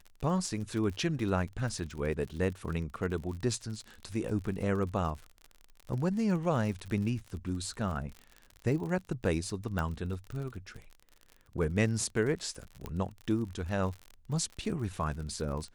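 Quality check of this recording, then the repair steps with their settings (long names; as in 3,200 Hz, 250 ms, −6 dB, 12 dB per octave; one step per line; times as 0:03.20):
surface crackle 50 per second −38 dBFS
0:09.79: click −21 dBFS
0:12.86: click −24 dBFS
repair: click removal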